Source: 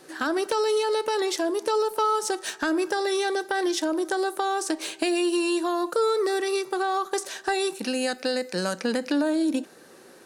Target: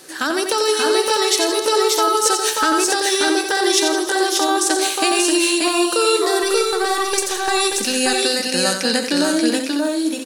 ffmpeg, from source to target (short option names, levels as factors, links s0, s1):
-filter_complex "[0:a]asettb=1/sr,asplit=3[s0][s1][s2];[s0]atrim=end=6.434[s3];[s1]atrim=start=6.43:end=7.55,asetpts=PTS-STARTPTS,afade=t=in:d=0.004:c=qsin,afade=t=out:st=1.116:d=0.004:c=qsin,aeval=exprs='if(lt(val(0),0),0.708*val(0),val(0))':c=same[s4];[s2]atrim=start=7.546[s5];[s3][s4]acrossfade=d=0.004:c1=hsin:c2=qsin[s6];[s6][s5]acrossfade=d=0.004:c1=qsin:c2=hsin,highshelf=f=2400:g=11,aecho=1:1:90|164|306|582|595|648:0.447|0.224|0.15|0.631|0.398|0.398,volume=1.41"